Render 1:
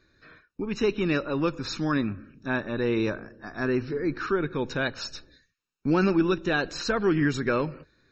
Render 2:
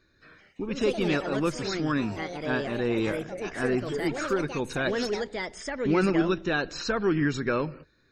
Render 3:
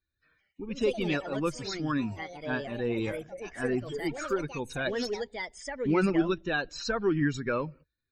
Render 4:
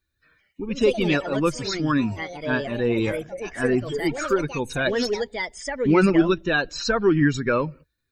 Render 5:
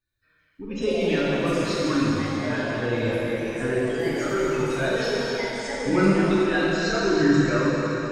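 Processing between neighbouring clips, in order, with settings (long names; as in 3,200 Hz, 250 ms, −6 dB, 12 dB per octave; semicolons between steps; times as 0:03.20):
delay with pitch and tempo change per echo 209 ms, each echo +4 semitones, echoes 3, each echo −6 dB; level −1.5 dB
spectral dynamics exaggerated over time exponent 1.5
notch filter 770 Hz, Q 17; level +8 dB
dense smooth reverb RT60 3.9 s, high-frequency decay 1×, DRR −8 dB; level −9 dB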